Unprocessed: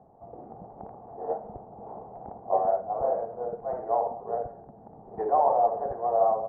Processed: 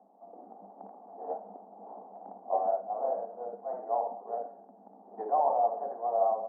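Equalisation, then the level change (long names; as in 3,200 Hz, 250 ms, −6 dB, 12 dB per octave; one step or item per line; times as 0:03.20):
Chebyshev high-pass with heavy ripple 190 Hz, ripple 6 dB
high-frequency loss of the air 310 metres
−2.5 dB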